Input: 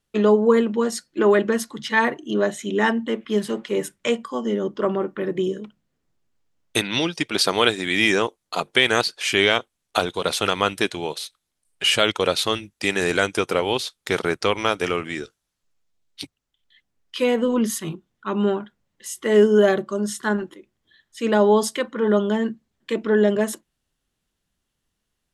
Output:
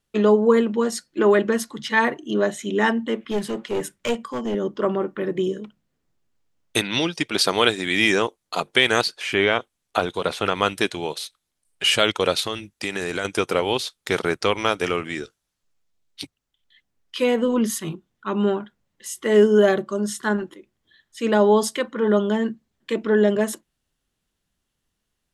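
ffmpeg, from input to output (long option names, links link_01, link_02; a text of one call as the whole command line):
ffmpeg -i in.wav -filter_complex "[0:a]asettb=1/sr,asplit=3[link_01][link_02][link_03];[link_01]atrim=end=3.314[link_04];[link_02]atrim=start=3.31:end=4.55,asetpts=PTS-STARTPTS,afade=type=in:duration=0.004:curve=qsin,afade=type=out:start_time=1.236:duration=0.004:curve=qsin,aeval=exprs='clip(val(0),-1,0.0668)':channel_layout=same[link_05];[link_03]atrim=start=4.546[link_06];[link_04][link_05]acrossfade=duration=0.004:curve1=hsin:curve2=qsin[link_07];[link_07][link_06]acrossfade=duration=0.004:curve1=qsin:curve2=hsin,asettb=1/sr,asplit=3[link_08][link_09][link_10];[link_08]atrim=end=9.144[link_11];[link_09]atrim=start=9.14:end=10.62,asetpts=PTS-STARTPTS,afade=type=in:duration=0.004:curve=qsin,afade=type=out:start_time=1.476:duration=0.004:curve=qsin,acrossover=split=2700[link_12][link_13];[link_13]acompressor=threshold=-35dB:ratio=4:attack=1:release=60[link_14];[link_12][link_14]amix=inputs=2:normalize=0[link_15];[link_10]atrim=start=10.616[link_16];[link_11][link_15]acrossfade=duration=0.004:curve1=hsin:curve2=qsin[link_17];[link_17][link_16]acrossfade=duration=0.004:curve1=qsin:curve2=hsin,asettb=1/sr,asplit=3[link_18][link_19][link_20];[link_18]atrim=end=12.404[link_21];[link_19]atrim=start=12.4:end=13.25,asetpts=PTS-STARTPTS,afade=type=in:duration=0.004:curve=qsin,afade=type=out:start_time=0.846:duration=0.004:curve=qsin,acompressor=threshold=-23dB:ratio=3:attack=3.2:release=140:knee=1:detection=peak[link_22];[link_20]atrim=start=13.246[link_23];[link_21][link_22]acrossfade=duration=0.004:curve1=hsin:curve2=qsin[link_24];[link_24][link_23]acrossfade=duration=0.004:curve1=qsin:curve2=hsin" out.wav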